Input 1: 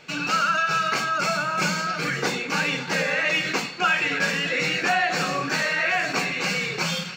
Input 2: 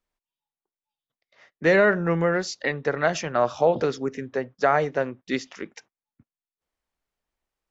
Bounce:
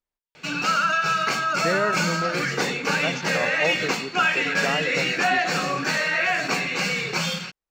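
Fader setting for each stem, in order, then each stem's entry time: +0.5, −7.0 decibels; 0.35, 0.00 seconds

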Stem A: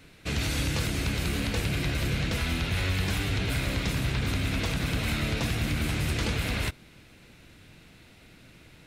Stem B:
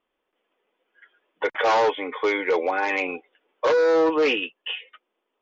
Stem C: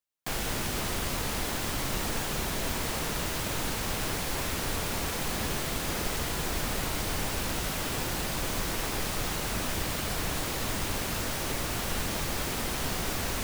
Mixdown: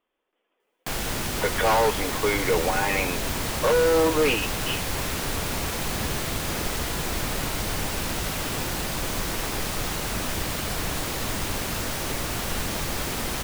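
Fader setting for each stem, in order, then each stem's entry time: −12.5, −1.5, +3.0 decibels; 2.00, 0.00, 0.60 seconds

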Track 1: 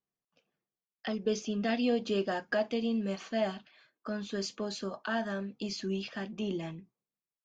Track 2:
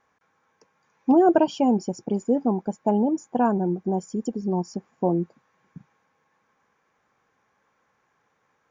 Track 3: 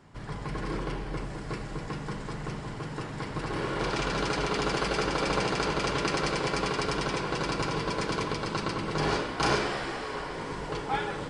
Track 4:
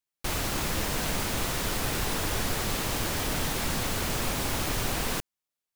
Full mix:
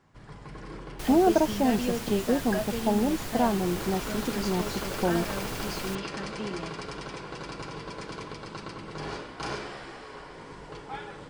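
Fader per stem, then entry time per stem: −2.0, −4.0, −8.5, −8.0 decibels; 0.00, 0.00, 0.00, 0.75 seconds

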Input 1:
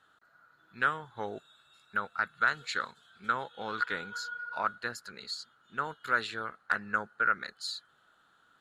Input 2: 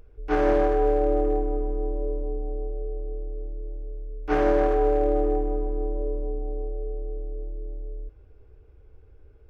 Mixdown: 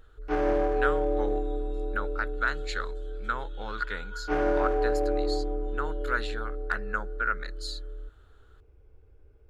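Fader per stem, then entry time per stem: −1.0, −4.5 decibels; 0.00, 0.00 seconds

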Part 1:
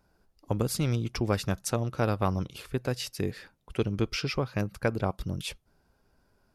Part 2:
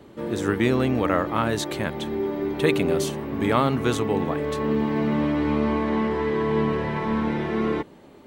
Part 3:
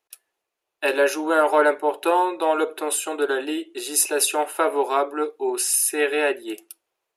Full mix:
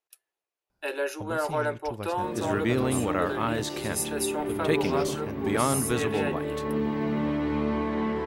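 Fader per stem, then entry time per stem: −10.0, −4.5, −10.5 decibels; 0.70, 2.05, 0.00 seconds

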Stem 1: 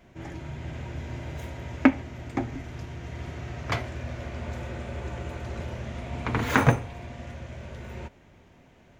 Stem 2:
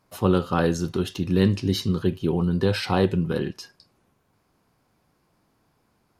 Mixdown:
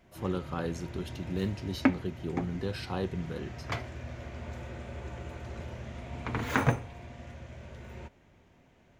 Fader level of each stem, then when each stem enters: −6.0, −12.5 decibels; 0.00, 0.00 seconds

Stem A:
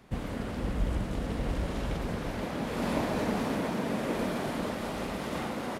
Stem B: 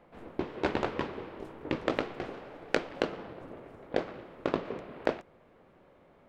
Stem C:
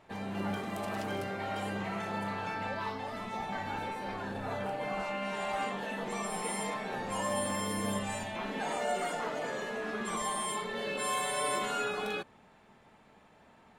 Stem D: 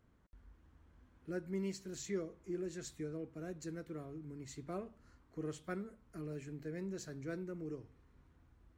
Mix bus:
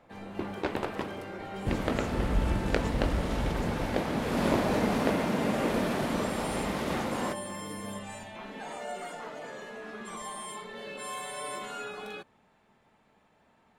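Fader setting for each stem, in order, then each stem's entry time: +2.5, −2.0, −5.5, −5.0 decibels; 1.55, 0.00, 0.00, 0.00 seconds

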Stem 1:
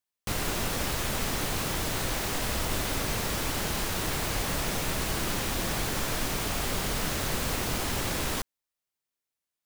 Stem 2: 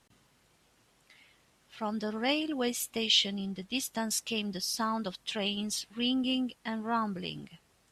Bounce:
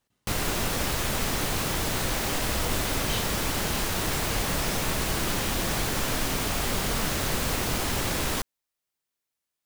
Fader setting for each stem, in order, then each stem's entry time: +2.5, −11.5 decibels; 0.00, 0.00 seconds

